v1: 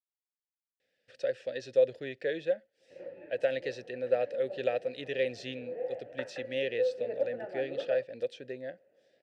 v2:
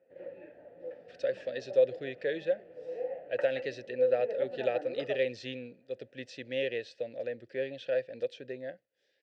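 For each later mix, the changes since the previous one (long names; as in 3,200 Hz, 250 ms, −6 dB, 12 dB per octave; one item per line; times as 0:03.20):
speech: add low-pass filter 6,400 Hz 12 dB per octave
background: entry −2.80 s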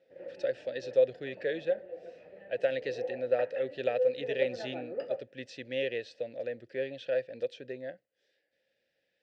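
speech: entry −0.80 s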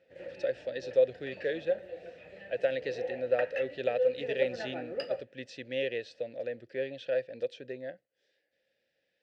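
background: remove resonant band-pass 450 Hz, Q 0.6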